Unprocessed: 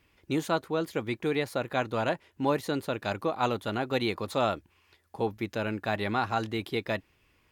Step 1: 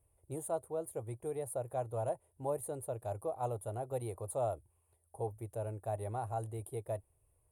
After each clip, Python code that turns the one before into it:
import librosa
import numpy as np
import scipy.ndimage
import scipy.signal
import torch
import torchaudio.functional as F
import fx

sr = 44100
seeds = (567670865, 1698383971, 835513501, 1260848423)

y = fx.curve_eq(x, sr, hz=(120.0, 190.0, 280.0, 410.0, 670.0, 1600.0, 5500.0, 9700.0, 14000.0), db=(0, -19, -17, -7, -2, -24, -28, 13, -7))
y = y * 10.0 ** (-2.5 / 20.0)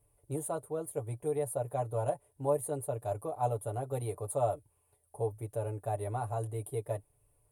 y = x + 0.69 * np.pad(x, (int(6.9 * sr / 1000.0), 0))[:len(x)]
y = y * 10.0 ** (2.5 / 20.0)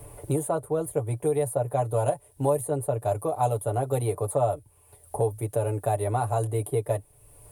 y = fx.band_squash(x, sr, depth_pct=70)
y = y * 10.0 ** (8.0 / 20.0)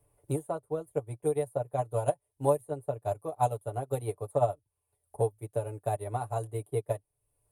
y = fx.upward_expand(x, sr, threshold_db=-36.0, expansion=2.5)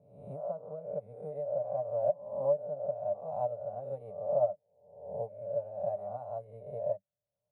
y = fx.spec_swells(x, sr, rise_s=0.76)
y = fx.double_bandpass(y, sr, hz=340.0, octaves=1.6)